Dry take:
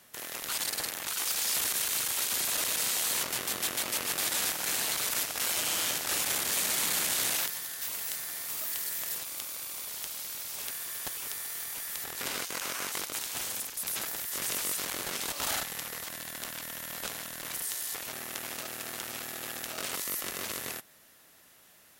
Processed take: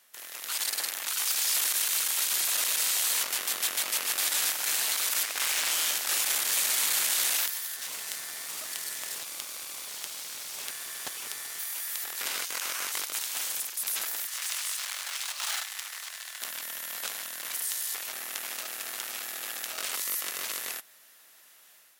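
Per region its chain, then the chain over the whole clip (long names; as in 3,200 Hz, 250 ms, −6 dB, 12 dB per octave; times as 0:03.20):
0:05.23–0:05.71: parametric band 2,100 Hz +7 dB 0.25 octaves + highs frequency-modulated by the lows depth 0.52 ms
0:07.76–0:11.59: low-shelf EQ 440 Hz +10.5 dB + bad sample-rate conversion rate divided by 2×, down filtered, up hold
0:14.27–0:16.41: running median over 3 samples + Bessel high-pass filter 990 Hz, order 8
whole clip: high-pass filter 1,100 Hz 6 dB per octave; automatic gain control gain up to 6 dB; level −3 dB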